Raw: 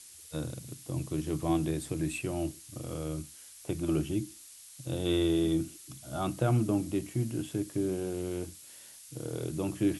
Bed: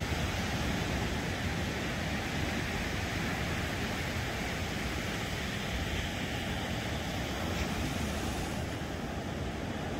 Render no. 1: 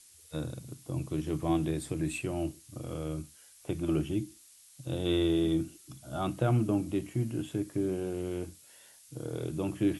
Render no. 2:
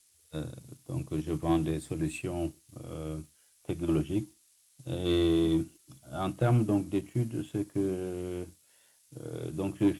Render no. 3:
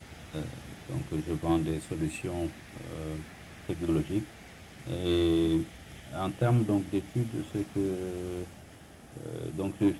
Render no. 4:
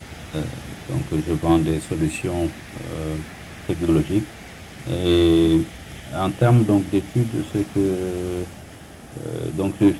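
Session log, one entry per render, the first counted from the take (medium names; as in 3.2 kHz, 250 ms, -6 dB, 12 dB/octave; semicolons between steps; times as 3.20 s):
noise print and reduce 6 dB
waveshaping leveller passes 1; upward expansion 1.5:1, over -36 dBFS
add bed -14.5 dB
trim +10 dB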